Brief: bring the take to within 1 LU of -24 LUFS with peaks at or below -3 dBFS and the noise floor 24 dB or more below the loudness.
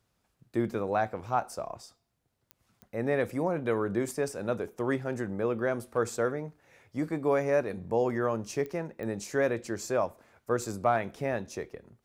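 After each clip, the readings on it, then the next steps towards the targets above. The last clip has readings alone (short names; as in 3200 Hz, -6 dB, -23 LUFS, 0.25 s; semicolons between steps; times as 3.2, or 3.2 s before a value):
clicks 4; loudness -31.0 LUFS; peak -13.5 dBFS; loudness target -24.0 LUFS
-> de-click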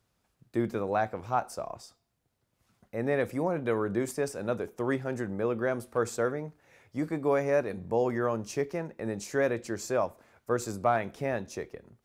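clicks 0; loudness -31.0 LUFS; peak -13.5 dBFS; loudness target -24.0 LUFS
-> gain +7 dB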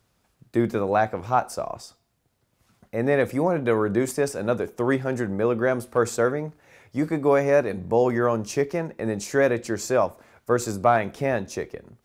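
loudness -24.0 LUFS; peak -6.5 dBFS; noise floor -70 dBFS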